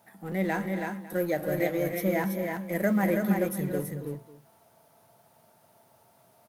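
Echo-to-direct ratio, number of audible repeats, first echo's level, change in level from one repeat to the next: -3.5 dB, 4, -17.0 dB, no steady repeat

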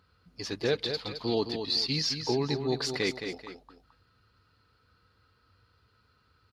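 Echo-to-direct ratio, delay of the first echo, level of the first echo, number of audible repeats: -7.0 dB, 0.217 s, -7.5 dB, 2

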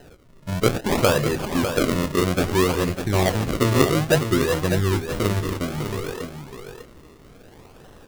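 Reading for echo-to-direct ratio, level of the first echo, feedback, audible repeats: -8.0 dB, -8.0 dB, no steady repeat, 1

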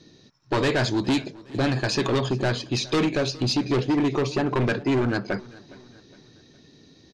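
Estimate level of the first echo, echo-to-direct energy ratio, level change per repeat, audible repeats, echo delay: -21.5 dB, -20.5 dB, -7.0 dB, 2, 0.412 s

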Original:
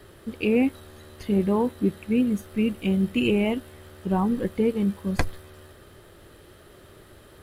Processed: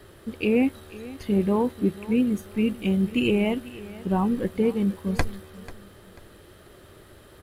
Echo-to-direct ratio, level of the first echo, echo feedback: -17.5 dB, -18.0 dB, 32%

